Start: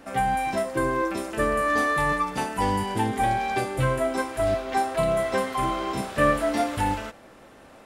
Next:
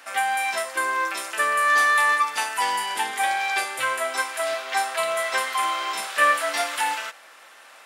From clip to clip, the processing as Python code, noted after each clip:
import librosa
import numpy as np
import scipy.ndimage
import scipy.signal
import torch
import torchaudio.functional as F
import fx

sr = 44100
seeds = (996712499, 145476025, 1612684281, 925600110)

y = scipy.signal.sosfilt(scipy.signal.butter(2, 1300.0, 'highpass', fs=sr, output='sos'), x)
y = F.gain(torch.from_numpy(y), 8.5).numpy()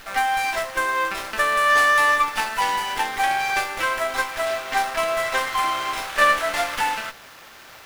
y = fx.dmg_noise_colour(x, sr, seeds[0], colour='white', level_db=-47.0)
y = fx.running_max(y, sr, window=5)
y = F.gain(torch.from_numpy(y), 2.0).numpy()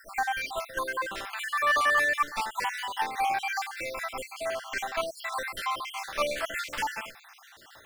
y = fx.spec_dropout(x, sr, seeds[1], share_pct=54)
y = F.gain(torch.from_numpy(y), -5.0).numpy()